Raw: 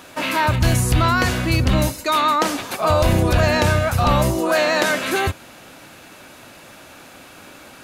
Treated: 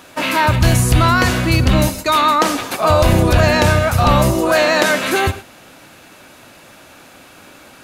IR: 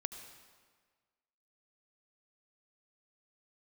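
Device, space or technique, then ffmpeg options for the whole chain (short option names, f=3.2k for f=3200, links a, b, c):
keyed gated reverb: -filter_complex "[0:a]asplit=3[a][b][c];[1:a]atrim=start_sample=2205[d];[b][d]afir=irnorm=-1:irlink=0[e];[c]apad=whole_len=345542[f];[e][f]sidechaingate=range=-33dB:threshold=-31dB:ratio=16:detection=peak,volume=-3dB[g];[a][g]amix=inputs=2:normalize=0"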